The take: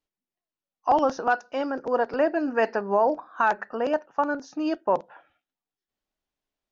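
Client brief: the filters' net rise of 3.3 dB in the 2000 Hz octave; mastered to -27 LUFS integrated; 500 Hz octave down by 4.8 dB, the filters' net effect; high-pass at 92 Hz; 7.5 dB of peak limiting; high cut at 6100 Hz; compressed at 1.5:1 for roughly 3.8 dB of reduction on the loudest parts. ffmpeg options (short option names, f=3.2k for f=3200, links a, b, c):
-af "highpass=92,lowpass=6.1k,equalizer=f=500:t=o:g=-6.5,equalizer=f=2k:t=o:g=5.5,acompressor=threshold=-28dB:ratio=1.5,volume=6dB,alimiter=limit=-15dB:level=0:latency=1"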